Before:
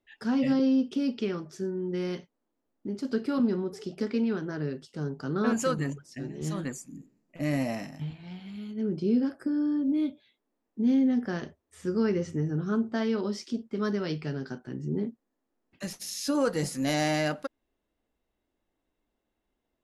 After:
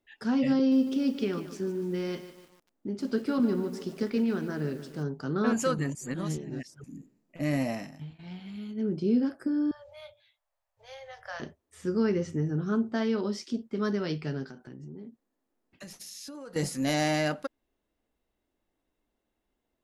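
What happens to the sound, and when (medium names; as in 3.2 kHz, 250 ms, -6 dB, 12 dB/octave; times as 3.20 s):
0.57–5.03 s: bit-crushed delay 148 ms, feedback 55%, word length 8-bit, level -11.5 dB
5.95–6.84 s: reverse
7.69–8.19 s: fade out linear, to -11 dB
9.71–11.40 s: Chebyshev band-stop 120–570 Hz, order 4
14.44–16.56 s: compression, threshold -41 dBFS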